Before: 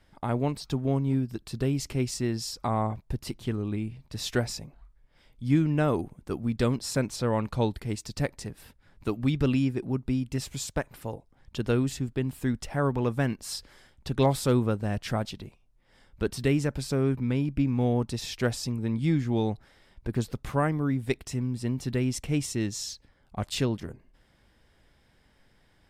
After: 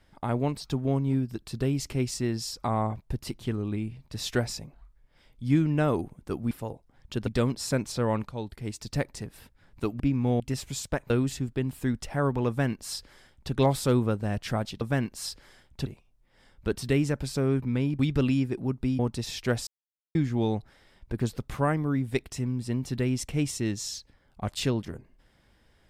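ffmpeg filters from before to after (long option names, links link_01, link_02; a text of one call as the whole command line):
ffmpeg -i in.wav -filter_complex "[0:a]asplit=13[link_01][link_02][link_03][link_04][link_05][link_06][link_07][link_08][link_09][link_10][link_11][link_12][link_13];[link_01]atrim=end=6.512[link_14];[link_02]atrim=start=10.938:end=11.702[link_15];[link_03]atrim=start=6.508:end=7.53,asetpts=PTS-STARTPTS,afade=type=out:start_time=1.018:duration=0.004:curve=hsin:silence=0.223872[link_16];[link_04]atrim=start=7.53:end=9.242,asetpts=PTS-STARTPTS,afade=type=in:duration=0.61:silence=0.223872[link_17];[link_05]atrim=start=17.538:end=17.942[link_18];[link_06]atrim=start=10.238:end=10.942[link_19];[link_07]atrim=start=11.698:end=15.412[link_20];[link_08]atrim=start=13.078:end=14.132[link_21];[link_09]atrim=start=15.408:end=17.542[link_22];[link_10]atrim=start=9.238:end=10.242[link_23];[link_11]atrim=start=17.938:end=18.62,asetpts=PTS-STARTPTS,afade=type=out:start_time=0.678:duration=0.004:curve=hsin[link_24];[link_12]atrim=start=18.62:end=19.1,asetpts=PTS-STARTPTS,volume=0[link_25];[link_13]atrim=start=19.1,asetpts=PTS-STARTPTS,afade=type=in:duration=0.004:curve=hsin[link_26];[link_14][link_15]acrossfade=duration=0.004:curve1=hsin:curve2=hsin[link_27];[link_16][link_17]concat=n=2:v=0:a=1[link_28];[link_27][link_28]acrossfade=duration=0.004:curve1=hsin:curve2=hsin[link_29];[link_29][link_18]acrossfade=duration=0.004:curve1=hsin:curve2=hsin[link_30];[link_30][link_19]acrossfade=duration=0.004:curve1=hsin:curve2=hsin[link_31];[link_31][link_20]acrossfade=duration=0.004:curve1=hsin:curve2=hsin[link_32];[link_32][link_21]acrossfade=duration=0.004:curve1=hsin:curve2=hsin[link_33];[link_33][link_22]acrossfade=duration=0.004:curve1=hsin:curve2=hsin[link_34];[link_34][link_23]acrossfade=duration=0.004:curve1=hsin:curve2=hsin[link_35];[link_24][link_25][link_26]concat=n=3:v=0:a=1[link_36];[link_35][link_36]acrossfade=duration=0.004:curve1=hsin:curve2=hsin" out.wav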